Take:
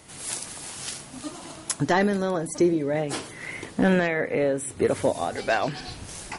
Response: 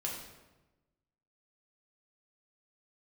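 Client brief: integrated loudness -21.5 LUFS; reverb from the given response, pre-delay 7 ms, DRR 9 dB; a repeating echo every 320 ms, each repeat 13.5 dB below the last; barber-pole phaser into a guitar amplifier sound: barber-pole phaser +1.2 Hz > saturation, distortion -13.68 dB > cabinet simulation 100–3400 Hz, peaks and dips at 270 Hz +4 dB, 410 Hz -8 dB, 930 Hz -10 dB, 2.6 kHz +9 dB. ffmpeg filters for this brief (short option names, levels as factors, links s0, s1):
-filter_complex "[0:a]aecho=1:1:320|640:0.211|0.0444,asplit=2[s0][s1];[1:a]atrim=start_sample=2205,adelay=7[s2];[s1][s2]afir=irnorm=-1:irlink=0,volume=0.282[s3];[s0][s3]amix=inputs=2:normalize=0,asplit=2[s4][s5];[s5]afreqshift=1.2[s6];[s4][s6]amix=inputs=2:normalize=1,asoftclip=threshold=0.0944,highpass=100,equalizer=f=270:t=q:w=4:g=4,equalizer=f=410:t=q:w=4:g=-8,equalizer=f=930:t=q:w=4:g=-10,equalizer=f=2600:t=q:w=4:g=9,lowpass=f=3400:w=0.5412,lowpass=f=3400:w=1.3066,volume=2.99"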